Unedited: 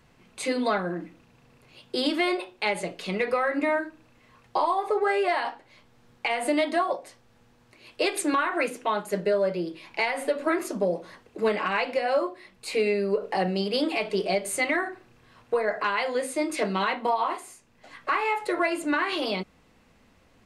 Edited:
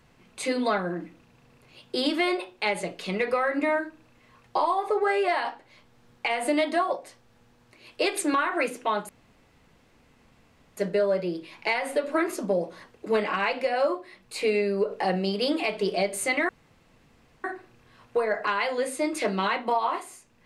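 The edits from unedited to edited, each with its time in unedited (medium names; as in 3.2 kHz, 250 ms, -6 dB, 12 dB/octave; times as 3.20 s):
9.09 s: insert room tone 1.68 s
14.81 s: insert room tone 0.95 s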